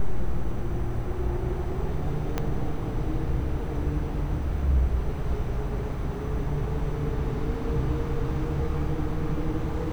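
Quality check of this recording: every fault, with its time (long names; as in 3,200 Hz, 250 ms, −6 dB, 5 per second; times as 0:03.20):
0:02.38: click −13 dBFS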